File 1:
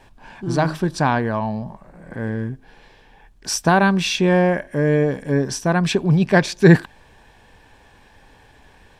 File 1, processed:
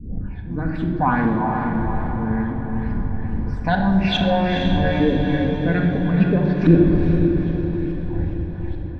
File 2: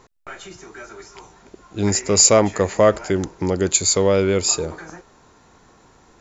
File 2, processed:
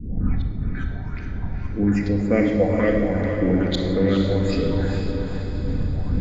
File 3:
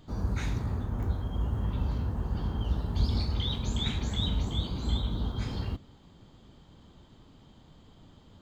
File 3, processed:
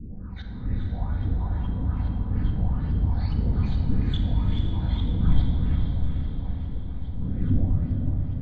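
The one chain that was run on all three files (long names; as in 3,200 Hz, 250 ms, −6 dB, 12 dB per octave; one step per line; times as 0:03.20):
fade in at the beginning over 0.94 s
wind on the microphone 120 Hz −29 dBFS
dynamic equaliser 280 Hz, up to +6 dB, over −32 dBFS, Q 1.6
in parallel at +2 dB: downward compressor, threshold −27 dBFS
on the sum: auto-filter low-pass saw up 2.4 Hz 290–4,000 Hz
all-pass phaser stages 8, 1.8 Hz, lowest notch 330–1,100 Hz
on a send: feedback delay with all-pass diffusion 469 ms, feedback 55%, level −5.5 dB
on the sum: rectangular room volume 2,800 cubic metres, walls mixed, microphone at 1.9 metres
level −7.5 dB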